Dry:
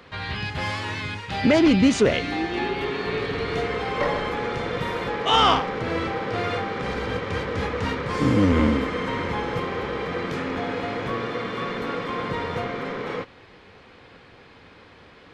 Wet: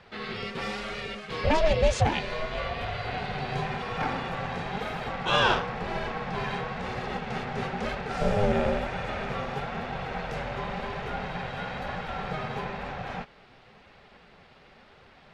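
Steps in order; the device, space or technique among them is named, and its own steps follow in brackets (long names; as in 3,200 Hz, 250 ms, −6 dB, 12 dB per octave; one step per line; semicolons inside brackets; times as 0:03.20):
alien voice (ring modulation 310 Hz; flanger 1 Hz, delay 1.5 ms, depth 7 ms, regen −43%)
level +1.5 dB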